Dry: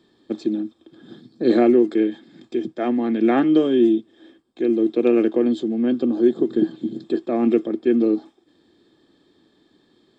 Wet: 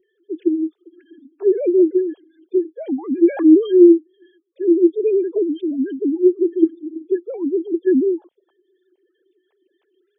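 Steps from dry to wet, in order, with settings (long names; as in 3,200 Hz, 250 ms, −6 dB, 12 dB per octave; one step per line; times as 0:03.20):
three sine waves on the formant tracks
gate on every frequency bin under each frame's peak −30 dB strong
phaser with staggered stages 3.1 Hz
level +5 dB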